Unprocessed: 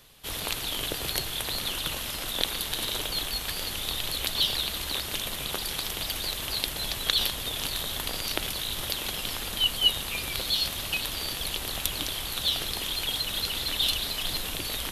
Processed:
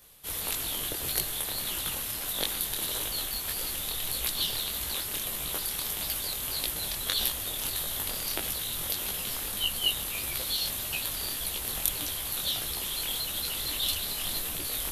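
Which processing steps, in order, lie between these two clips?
EQ curve 1900 Hz 0 dB, 3000 Hz -2 dB, 4800 Hz 0 dB, 12000 Hz +9 dB; detuned doubles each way 57 cents

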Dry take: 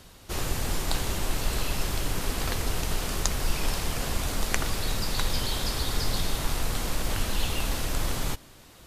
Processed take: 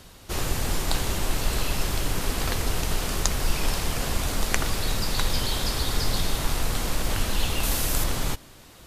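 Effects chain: 7.63–8.04 high shelf 7200 Hz +10.5 dB; gain +2.5 dB

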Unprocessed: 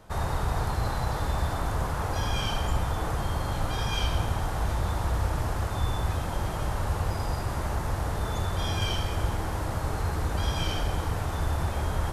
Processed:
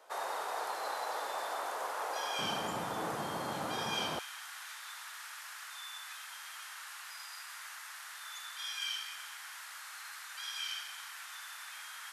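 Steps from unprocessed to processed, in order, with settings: HPF 470 Hz 24 dB/oct, from 2.39 s 180 Hz, from 4.19 s 1500 Hz; gain -3.5 dB

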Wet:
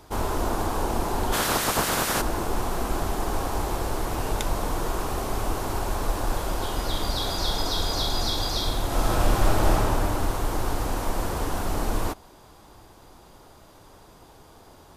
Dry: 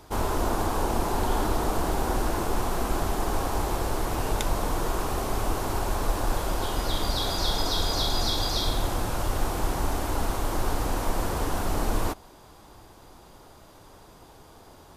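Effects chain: 1.32–2.2 spectral limiter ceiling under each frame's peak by 26 dB; 8.86–9.73 reverb throw, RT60 3 s, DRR -5.5 dB

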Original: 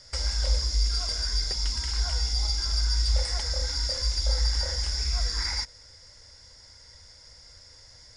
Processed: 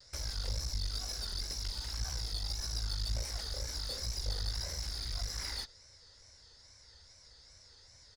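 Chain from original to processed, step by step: wow and flutter 130 cents; one-sided clip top -34 dBFS, bottom -16.5 dBFS; harmoniser -4 st -10 dB; gain -8 dB

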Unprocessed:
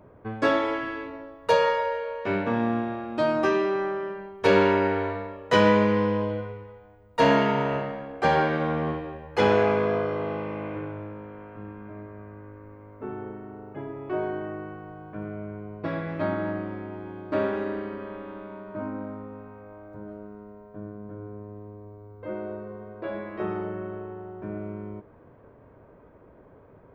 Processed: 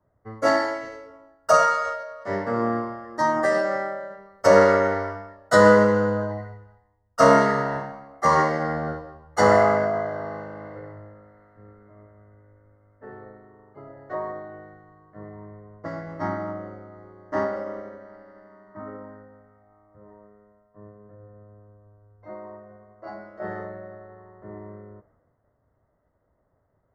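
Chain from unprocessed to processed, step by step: Butterworth band-stop 2400 Hz, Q 1.3; formant shift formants +5 st; three-band expander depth 70%; gain -1 dB

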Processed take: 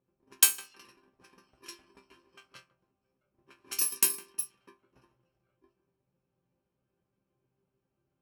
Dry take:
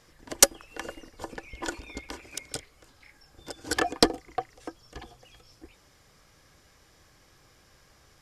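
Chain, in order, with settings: FFT order left unsorted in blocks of 64 samples; HPF 47 Hz; tilt +3.5 dB/oct; in parallel at +2.5 dB: compressor 4:1, threshold -31 dBFS, peak gain reduction 26.5 dB; on the sum: resonator bank C3 sus4, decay 0.25 s; darkening echo 0.158 s, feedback 30%, low-pass 1800 Hz, level -14 dB; low-pass opened by the level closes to 410 Hz, open at -24.5 dBFS; gain +1.5 dB

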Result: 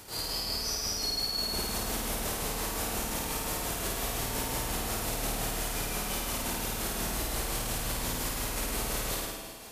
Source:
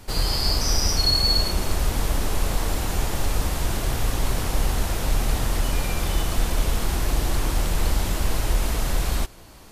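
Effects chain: octaver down 2 oct, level 0 dB; HPF 250 Hz 6 dB/oct; high shelf 6600 Hz +7.5 dB; in parallel at -1 dB: negative-ratio compressor -29 dBFS; on the sum: limiter -17.5 dBFS, peak gain reduction 9 dB; tremolo 5.7 Hz, depth 70%; flutter echo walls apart 9.1 m, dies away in 1.2 s; reverb RT60 0.90 s, pre-delay 0.11 s, DRR 6 dB; gain -7 dB

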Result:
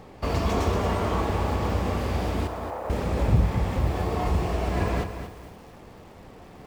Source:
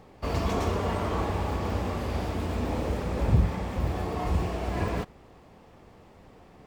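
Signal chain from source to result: in parallel at 0 dB: compressor, threshold -34 dBFS, peak gain reduction 17 dB; 2.47–2.9 on the sum: Butterworth band-pass 910 Hz, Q 0.89; lo-fi delay 0.231 s, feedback 35%, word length 8-bit, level -9 dB

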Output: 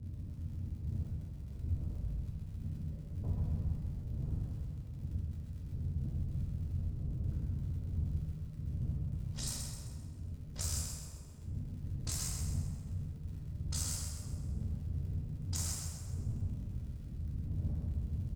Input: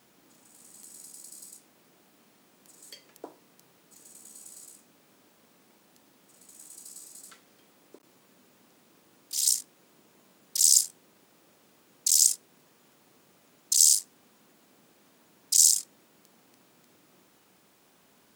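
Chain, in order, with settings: one diode to ground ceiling -22 dBFS; wind noise 140 Hz -41 dBFS; HPF 48 Hz; notch 360 Hz, Q 12; low-pass opened by the level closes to 320 Hz, open at -24 dBFS; EQ curve 100 Hz 0 dB, 220 Hz -7 dB, 400 Hz -12 dB; compressor 6:1, threshold -47 dBFS, peak gain reduction 19.5 dB; crackle 94/s -60 dBFS; feedback echo 0.131 s, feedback 46%, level -6 dB; reverb RT60 1.5 s, pre-delay 4 ms, DRR -2.5 dB; gain +7 dB

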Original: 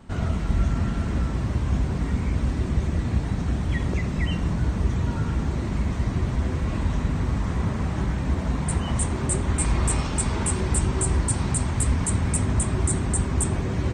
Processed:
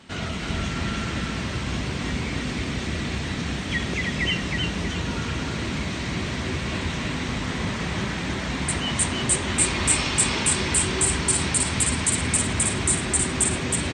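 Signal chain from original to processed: weighting filter D; feedback echo 0.318 s, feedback 32%, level -3.5 dB

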